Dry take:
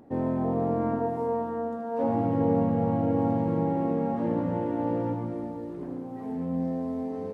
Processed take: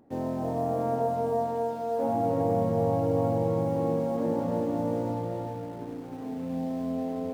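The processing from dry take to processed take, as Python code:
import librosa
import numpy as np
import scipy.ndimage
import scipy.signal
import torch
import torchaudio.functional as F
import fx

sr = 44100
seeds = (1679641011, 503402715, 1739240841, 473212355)

p1 = fx.dynamic_eq(x, sr, hz=690.0, q=2.3, threshold_db=-44.0, ratio=4.0, max_db=6)
p2 = fx.quant_dither(p1, sr, seeds[0], bits=6, dither='none')
p3 = p1 + (p2 * 10.0 ** (-12.0 / 20.0))
p4 = fx.echo_filtered(p3, sr, ms=310, feedback_pct=39, hz=2000.0, wet_db=-3.5)
y = p4 * 10.0 ** (-6.5 / 20.0)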